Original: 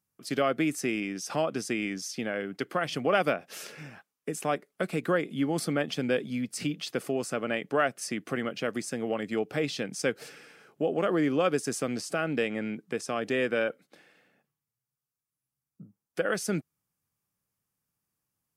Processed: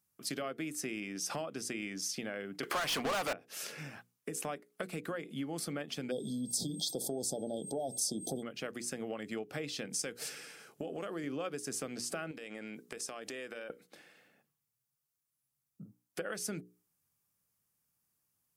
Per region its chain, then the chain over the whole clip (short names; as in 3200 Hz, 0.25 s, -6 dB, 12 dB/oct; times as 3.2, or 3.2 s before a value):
2.63–3.33 overdrive pedal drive 35 dB, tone 7200 Hz, clips at -9.5 dBFS + bell 1000 Hz +3.5 dB + upward expander, over -34 dBFS
6.1–8.42 whine 8400 Hz -58 dBFS + brick-wall FIR band-stop 880–3200 Hz + fast leveller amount 50%
9.9–11.24 bell 8500 Hz +6.5 dB 2.1 oct + compressor 2:1, threshold -31 dBFS
12.31–13.7 tone controls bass -8 dB, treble +5 dB + compressor 10:1, threshold -38 dBFS
whole clip: compressor 4:1, threshold -36 dBFS; high shelf 5000 Hz +6.5 dB; notches 60/120/180/240/300/360/420/480 Hz; gain -1 dB